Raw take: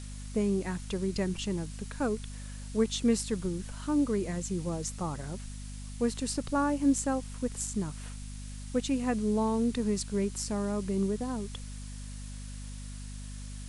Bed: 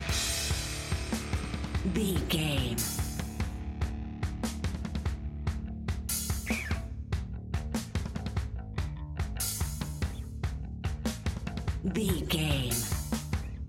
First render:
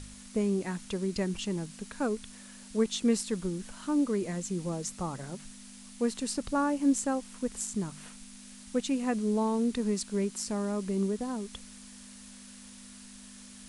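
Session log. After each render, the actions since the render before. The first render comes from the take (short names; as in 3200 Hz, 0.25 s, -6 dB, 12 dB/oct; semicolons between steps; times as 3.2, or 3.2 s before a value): de-hum 50 Hz, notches 3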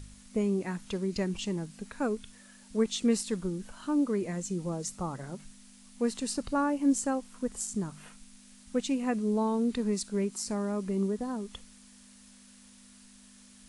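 noise print and reduce 6 dB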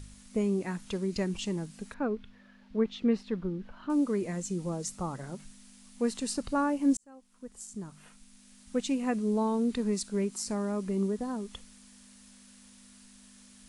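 1.94–3.9 air absorption 310 m; 6.97–8.88 fade in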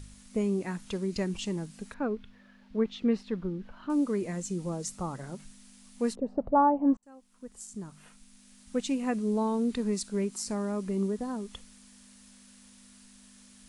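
6.15–7.03 envelope low-pass 460–1100 Hz up, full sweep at -21.5 dBFS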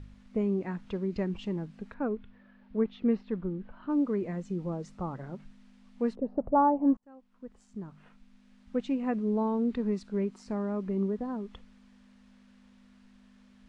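LPF 3300 Hz 12 dB/oct; high shelf 2300 Hz -8.5 dB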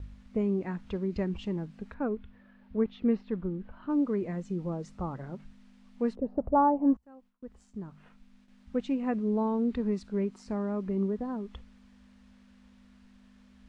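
bell 62 Hz +12 dB 0.63 oct; gate with hold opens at -51 dBFS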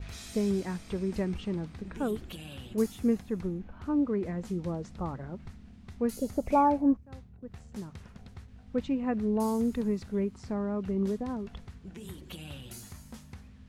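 add bed -14.5 dB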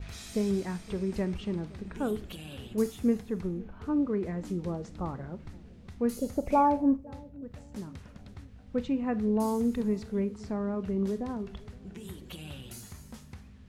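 analogue delay 0.516 s, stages 2048, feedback 50%, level -21 dB; Schroeder reverb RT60 0.33 s, combs from 26 ms, DRR 15 dB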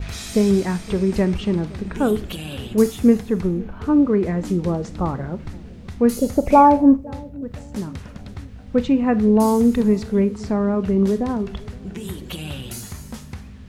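gain +12 dB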